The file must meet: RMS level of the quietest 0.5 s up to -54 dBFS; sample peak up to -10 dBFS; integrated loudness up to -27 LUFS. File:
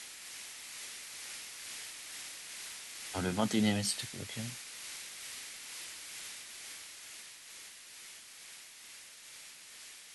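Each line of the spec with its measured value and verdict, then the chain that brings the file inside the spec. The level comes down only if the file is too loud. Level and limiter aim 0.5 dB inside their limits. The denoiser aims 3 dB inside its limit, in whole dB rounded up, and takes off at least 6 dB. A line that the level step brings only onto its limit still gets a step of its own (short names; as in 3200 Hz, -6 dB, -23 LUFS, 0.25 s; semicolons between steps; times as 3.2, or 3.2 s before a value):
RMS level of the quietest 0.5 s -52 dBFS: fail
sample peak -17.5 dBFS: OK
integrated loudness -40.0 LUFS: OK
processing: denoiser 6 dB, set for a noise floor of -52 dBFS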